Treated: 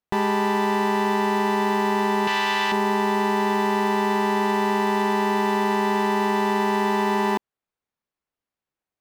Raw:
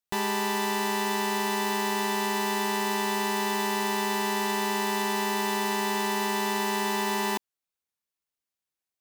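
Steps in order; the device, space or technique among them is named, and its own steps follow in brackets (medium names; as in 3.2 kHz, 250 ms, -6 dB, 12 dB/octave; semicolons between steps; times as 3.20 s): 2.27–2.72 s: FFT filter 130 Hz 0 dB, 240 Hz -12 dB, 3.3 kHz +11 dB, 10 kHz 0 dB; through cloth (treble shelf 3.1 kHz -18 dB); trim +8 dB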